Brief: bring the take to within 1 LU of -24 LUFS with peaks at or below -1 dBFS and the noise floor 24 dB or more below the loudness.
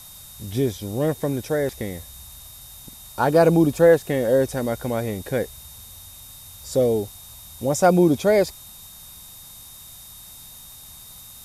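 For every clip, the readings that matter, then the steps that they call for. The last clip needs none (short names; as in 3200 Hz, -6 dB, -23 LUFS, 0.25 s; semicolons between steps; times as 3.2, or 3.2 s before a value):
steady tone 3700 Hz; tone level -49 dBFS; noise floor -43 dBFS; noise floor target -45 dBFS; loudness -21.0 LUFS; peak -5.0 dBFS; loudness target -24.0 LUFS
-> notch 3700 Hz, Q 30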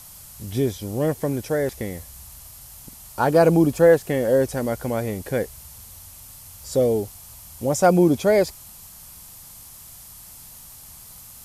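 steady tone none; noise floor -44 dBFS; noise floor target -45 dBFS
-> denoiser 6 dB, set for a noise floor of -44 dBFS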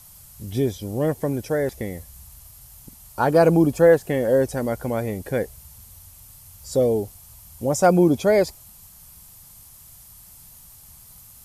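noise floor -47 dBFS; loudness -21.0 LUFS; peak -5.0 dBFS; loudness target -24.0 LUFS
-> gain -3 dB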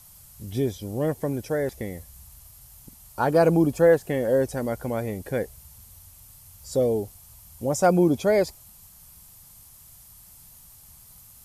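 loudness -24.0 LUFS; peak -8.0 dBFS; noise floor -50 dBFS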